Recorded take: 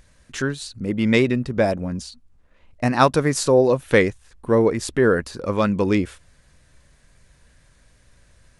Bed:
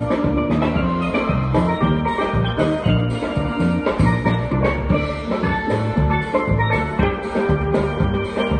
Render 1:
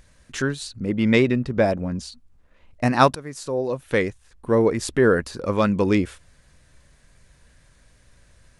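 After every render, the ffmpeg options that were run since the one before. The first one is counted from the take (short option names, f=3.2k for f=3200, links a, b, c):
-filter_complex "[0:a]asettb=1/sr,asplit=3[a][b][c];[a]atrim=end=0.714[d];[b]atrim=start=0.71:end=2.03,asetpts=PTS-STARTPTS,afade=t=in:d=0.004:c=qsin,afade=t=out:st=1.316:d=0.004:c=qsin,highshelf=f=7.8k:g=-9.5[e];[c]atrim=start=2.026[f];[d][e]acrossfade=d=0.004:c1=hsin:c2=qsin[g];[g][f]acrossfade=d=0.004:c1=qsin:c2=hsin,asplit=2[h][i];[h]atrim=end=3.15,asetpts=PTS-STARTPTS,afade=t=out:st=3.146:d=0.004:c=hsin:silence=0.112202[j];[i]atrim=start=3.15,asetpts=PTS-STARTPTS,afade=t=in:d=1.7:silence=0.112202[k];[j][k]concat=n=2:v=0:a=1"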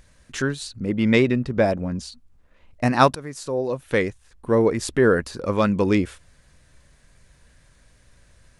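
-filter_complex "[0:a]asettb=1/sr,asplit=3[a][b][c];[a]atrim=end=2.894[d];[b]atrim=start=2.89:end=3.32,asetpts=PTS-STARTPTS,afade=t=in:d=0.004:c=qsin,afade=t=out:st=0.426:d=0.004:c=qsin,acompressor=mode=upward:threshold=-28dB:ratio=2.5:attack=3.2:release=140:knee=2.83:detection=peak[e];[c]atrim=start=3.316[f];[d][e]acrossfade=d=0.004:c1=hsin:c2=qsin[g];[g][f]acrossfade=d=0.004:c1=qsin:c2=hsin"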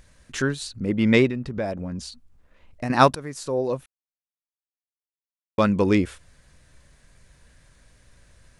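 -filter_complex "[0:a]asettb=1/sr,asplit=3[a][b][c];[a]atrim=end=1.274[d];[b]atrim=start=1.27:end=2.9,asetpts=PTS-STARTPTS,afade=t=in:d=0.004:c=qsin,afade=t=out:st=1.626:d=0.004:c=qsin,acompressor=threshold=-30dB:ratio=2:attack=3.2:release=140:knee=1:detection=peak[e];[c]atrim=start=2.896[f];[d][e]acrossfade=d=0.004:c1=hsin:c2=qsin[g];[g][f]acrossfade=d=0.004:c1=qsin:c2=hsin,asplit=3[h][i][j];[h]atrim=end=3.86,asetpts=PTS-STARTPTS,afade=t=out:st=3.856:d=0.004:c=hsin[k];[i]atrim=start=3.86:end=5.58,asetpts=PTS-STARTPTS,volume=0[l];[j]atrim=start=5.58,asetpts=PTS-STARTPTS,afade=t=in:d=0.004:c=hsin[m];[k][l][m]concat=n=3:v=0:a=1"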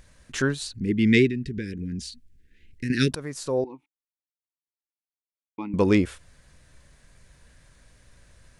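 -filter_complex "[0:a]asettb=1/sr,asplit=3[a][b][c];[a]atrim=end=0.744[d];[b]atrim=start=0.74:end=3.12,asetpts=PTS-STARTPTS,afade=t=in:d=0.004:c=qsin,afade=t=out:st=2.376:d=0.004:c=qsin,asuperstop=centerf=840:order=12:qfactor=0.7[e];[c]atrim=start=3.116[f];[d][e]acrossfade=d=0.004:c1=hsin:c2=qsin[g];[g][f]acrossfade=d=0.004:c1=qsin:c2=hsin,asettb=1/sr,asplit=3[h][i][j];[h]atrim=end=3.644[k];[i]atrim=start=3.64:end=5.74,asetpts=PTS-STARTPTS,afade=t=in:d=0.004:c=qsin,afade=t=out:st=2.096:d=0.004:c=qsin,asplit=3[l][m][n];[l]bandpass=f=300:t=q:w=8,volume=0dB[o];[m]bandpass=f=870:t=q:w=8,volume=-6dB[p];[n]bandpass=f=2.24k:t=q:w=8,volume=-9dB[q];[o][p][q]amix=inputs=3:normalize=0[r];[j]atrim=start=5.736[s];[k][r]acrossfade=d=0.004:c1=hsin:c2=qsin[t];[t][s]acrossfade=d=0.004:c1=qsin:c2=hsin"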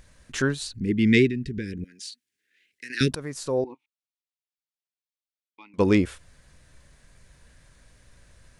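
-filter_complex "[0:a]asettb=1/sr,asplit=3[a][b][c];[a]atrim=end=1.844[d];[b]atrim=start=1.84:end=3.01,asetpts=PTS-STARTPTS,afade=t=in:d=0.004:c=qsin,afade=t=out:st=1.166:d=0.004:c=qsin,highpass=790[e];[c]atrim=start=3.006[f];[d][e]acrossfade=d=0.004:c1=hsin:c2=qsin[g];[g][f]acrossfade=d=0.004:c1=qsin:c2=hsin,asplit=3[h][i][j];[h]afade=t=out:st=3.73:d=0.02[k];[i]bandpass=f=3.6k:t=q:w=1,afade=t=in:st=3.73:d=0.02,afade=t=out:st=5.78:d=0.02[l];[j]afade=t=in:st=5.78:d=0.02[m];[k][l][m]amix=inputs=3:normalize=0"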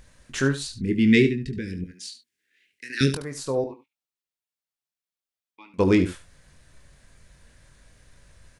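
-filter_complex "[0:a]asplit=2[a][b];[b]adelay=22,volume=-9dB[c];[a][c]amix=inputs=2:normalize=0,aecho=1:1:73:0.237"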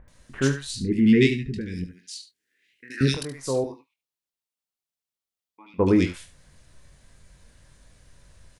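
-filter_complex "[0:a]asplit=2[a][b];[b]adelay=23,volume=-14dB[c];[a][c]amix=inputs=2:normalize=0,acrossover=split=1800[d][e];[e]adelay=80[f];[d][f]amix=inputs=2:normalize=0"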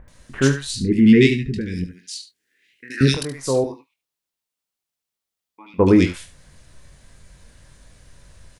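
-af "volume=5.5dB,alimiter=limit=-3dB:level=0:latency=1"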